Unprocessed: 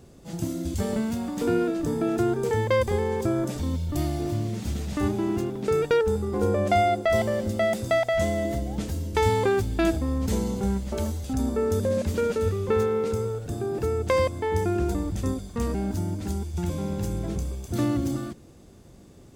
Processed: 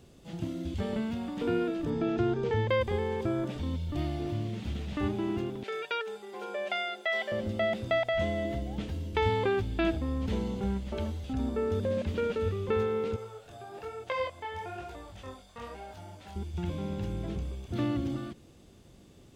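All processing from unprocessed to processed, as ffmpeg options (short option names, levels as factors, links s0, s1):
-filter_complex "[0:a]asettb=1/sr,asplit=3[s0][s1][s2];[s0]atrim=end=1.904[s3];[s1]atrim=start=1.9:end=2.7,asetpts=PTS-STARTPTS,afade=t=in:d=0.004:c=qsin,afade=t=out:st=0.796:d=0.004:c=qsin,lowpass=f=6200:w=0.5412,lowpass=f=6200:w=1.3066,lowshelf=f=180:g=4.5[s4];[s2]atrim=start=2.696[s5];[s3][s4]acrossfade=d=0.004:c1=hsin:c2=qsin[s6];[s6][s5]acrossfade=d=0.004:c1=qsin:c2=hsin,asettb=1/sr,asplit=3[s7][s8][s9];[s7]atrim=end=5.634[s10];[s8]atrim=start=5.63:end=7.32,asetpts=PTS-STARTPTS,afade=t=in:d=0.004:c=qsin,afade=t=out:st=1.686:d=0.004:c=qsin,highpass=790,bandreject=f=1200:w=5.3,aecho=1:1:5.1:0.74,atrim=end_sample=74529[s11];[s9]atrim=start=7.316[s12];[s10][s11]acrossfade=d=0.004:c1=hsin:c2=qsin[s13];[s13][s12]acrossfade=d=0.004:c1=qsin:c2=hsin,asettb=1/sr,asplit=3[s14][s15][s16];[s14]atrim=end=13.164[s17];[s15]atrim=start=13.16:end=16.36,asetpts=PTS-STARTPTS,afade=t=in:d=0.004:c=qsin,afade=t=out:st=3.196:d=0.004:c=qsin,lowshelf=f=450:t=q:w=1.5:g=-11.5,flanger=delay=17.5:depth=6.9:speed=1.1[s18];[s16]atrim=start=16.356[s19];[s17][s18]acrossfade=d=0.004:c1=hsin:c2=qsin[s20];[s20][s19]acrossfade=d=0.004:c1=qsin:c2=hsin,acrossover=split=3800[s21][s22];[s22]acompressor=threshold=0.00112:ratio=4:attack=1:release=60[s23];[s21][s23]amix=inputs=2:normalize=0,equalizer=f=3100:w=1.5:g=7.5,volume=0.531"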